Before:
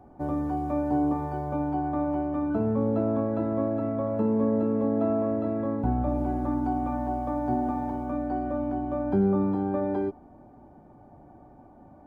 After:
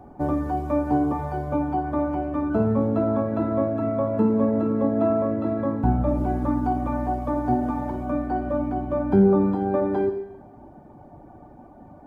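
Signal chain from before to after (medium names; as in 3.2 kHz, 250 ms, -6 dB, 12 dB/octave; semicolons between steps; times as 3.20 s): reverb removal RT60 0.73 s; Schroeder reverb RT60 1 s, DRR 6.5 dB; trim +6.5 dB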